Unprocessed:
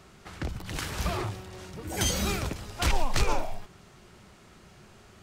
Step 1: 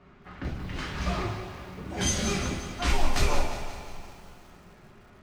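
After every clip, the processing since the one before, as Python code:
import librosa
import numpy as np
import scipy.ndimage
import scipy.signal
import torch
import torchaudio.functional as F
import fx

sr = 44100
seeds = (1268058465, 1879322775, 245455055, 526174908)

y = fx.env_lowpass(x, sr, base_hz=2100.0, full_db=-19.5)
y = fx.rev_double_slope(y, sr, seeds[0], early_s=0.37, late_s=3.7, knee_db=-20, drr_db=-3.0)
y = fx.echo_crushed(y, sr, ms=178, feedback_pct=55, bits=8, wet_db=-10)
y = y * 10.0 ** (-4.5 / 20.0)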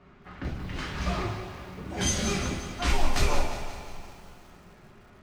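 y = x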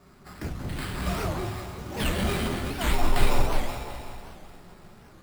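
y = fx.sample_hold(x, sr, seeds[1], rate_hz=6200.0, jitter_pct=0)
y = fx.echo_alternate(y, sr, ms=186, hz=1200.0, feedback_pct=51, wet_db=-2.0)
y = fx.record_warp(y, sr, rpm=78.0, depth_cents=250.0)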